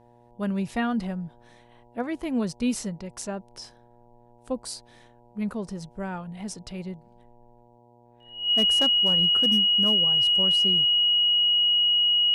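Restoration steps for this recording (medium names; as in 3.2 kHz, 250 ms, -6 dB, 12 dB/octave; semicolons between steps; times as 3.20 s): clip repair -15 dBFS; de-hum 119.8 Hz, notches 8; band-stop 2.9 kHz, Q 30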